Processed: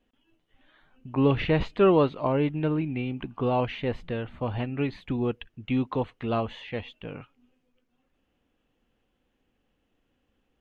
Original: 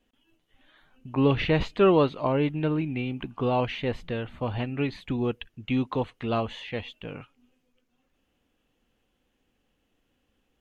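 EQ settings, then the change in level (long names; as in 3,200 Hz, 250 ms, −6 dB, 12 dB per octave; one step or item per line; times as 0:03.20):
high-shelf EQ 4,700 Hz −10.5 dB
0.0 dB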